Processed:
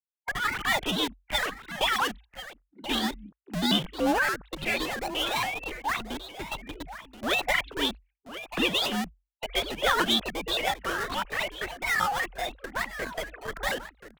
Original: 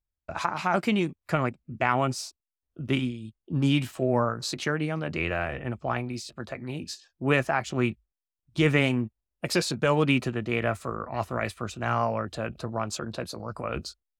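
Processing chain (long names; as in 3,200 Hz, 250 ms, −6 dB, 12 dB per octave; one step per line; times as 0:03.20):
three sine waves on the formant tracks
low-pass filter 2,100 Hz 12 dB per octave
noise gate −46 dBFS, range −12 dB
spectral tilt +3.5 dB per octave
in parallel at −6 dB: comparator with hysteresis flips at −34.5 dBFS
on the sum: frequency shifter −50 Hz
formants moved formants +6 semitones
on a send: single-tap delay 1,038 ms −13.5 dB
on the sum: pitch modulation by a square or saw wave saw up 3.5 Hz, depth 250 cents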